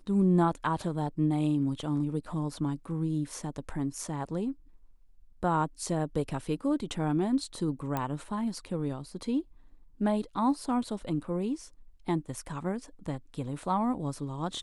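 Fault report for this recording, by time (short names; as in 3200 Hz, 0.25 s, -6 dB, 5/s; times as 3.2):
7.97 pop -17 dBFS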